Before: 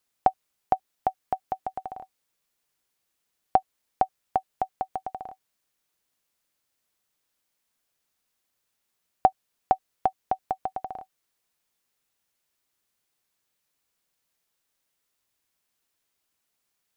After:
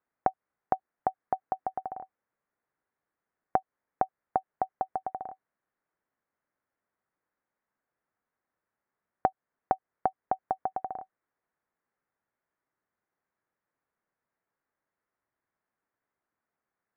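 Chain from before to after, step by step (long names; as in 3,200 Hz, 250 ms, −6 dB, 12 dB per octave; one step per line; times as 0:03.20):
downward compressor 3 to 1, threshold −23 dBFS, peak gain reduction 8 dB
Butterworth low-pass 1,900 Hz 36 dB per octave
low-shelf EQ 79 Hz −10 dB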